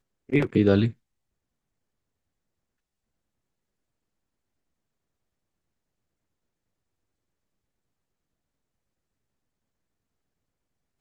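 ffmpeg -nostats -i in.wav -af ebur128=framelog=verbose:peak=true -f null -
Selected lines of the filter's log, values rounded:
Integrated loudness:
  I:         -23.2 LUFS
  Threshold: -33.6 LUFS
Loudness range:
  LRA:         9.8 LU
  Threshold: -50.2 LUFS
  LRA low:   -38.2 LUFS
  LRA high:  -28.4 LUFS
True peak:
  Peak:       -7.5 dBFS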